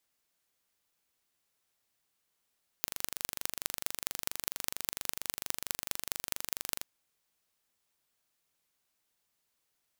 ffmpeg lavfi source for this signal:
-f lavfi -i "aevalsrc='0.75*eq(mod(n,1807),0)*(0.5+0.5*eq(mod(n,9035),0))':d=3.99:s=44100"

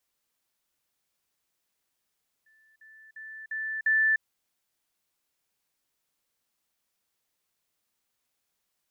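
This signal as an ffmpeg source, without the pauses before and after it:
-f lavfi -i "aevalsrc='pow(10,(-60+10*floor(t/0.35))/20)*sin(2*PI*1760*t)*clip(min(mod(t,0.35),0.3-mod(t,0.35))/0.005,0,1)':d=1.75:s=44100"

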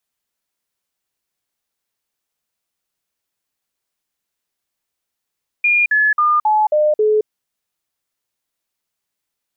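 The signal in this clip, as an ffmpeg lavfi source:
-f lavfi -i "aevalsrc='0.282*clip(min(mod(t,0.27),0.22-mod(t,0.27))/0.005,0,1)*sin(2*PI*2420*pow(2,-floor(t/0.27)/2)*mod(t,0.27))':d=1.62:s=44100"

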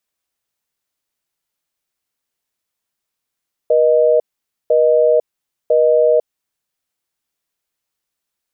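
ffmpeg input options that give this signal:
-f lavfi -i "aevalsrc='0.251*(sin(2*PI*480*t)+sin(2*PI*620*t))*clip(min(mod(t,1),0.5-mod(t,1))/0.005,0,1)':d=2.63:s=44100"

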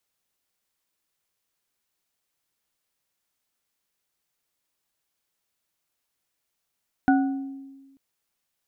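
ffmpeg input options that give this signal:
-f lavfi -i "aevalsrc='0.178*pow(10,-3*t/1.36)*sin(2*PI*272*t)+0.112*pow(10,-3*t/0.669)*sin(2*PI*749.9*t)+0.0708*pow(10,-3*t/0.417)*sin(2*PI*1469.9*t)':d=0.89:s=44100"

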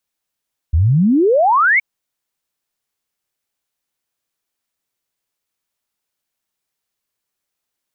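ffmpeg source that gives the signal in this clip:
-f lavfi -i "aevalsrc='0.335*clip(min(t,1.07-t)/0.01,0,1)*sin(2*PI*72*1.07/log(2300/72)*(exp(log(2300/72)*t/1.07)-1))':d=1.07:s=44100"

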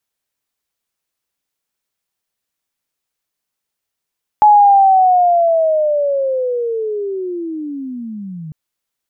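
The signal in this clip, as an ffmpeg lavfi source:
-f lavfi -i "aevalsrc='pow(10,(-4-22*t/4.1)/20)*sin(2*PI*(850*t-700*t*t/(2*4.1)))':d=4.1:s=44100"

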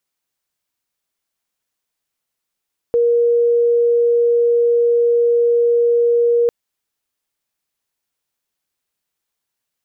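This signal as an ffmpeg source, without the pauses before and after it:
-f lavfi -i "aevalsrc='0.282*sin(2*PI*473*t)':d=3.55:s=44100"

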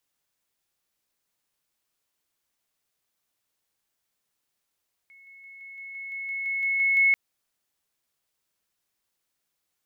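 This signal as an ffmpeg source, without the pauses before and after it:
-f lavfi -i "aevalsrc='pow(10,(-49.5+3*floor(t/0.17))/20)*sin(2*PI*2190*t)':d=2.04:s=44100"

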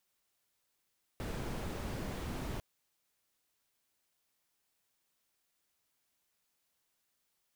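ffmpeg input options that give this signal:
-f lavfi -i "anoisesrc=c=brown:a=0.0525:d=1.4:r=44100:seed=1"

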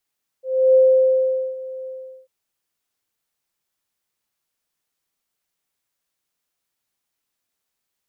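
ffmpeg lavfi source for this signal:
-f lavfi -i "aevalsrc='0.355*sin(2*PI*521*t)':d=1.844:s=44100,afade=t=in:d=0.316,afade=t=out:st=0.316:d=0.807:silence=0.106,afade=t=out:st=1.44:d=0.404"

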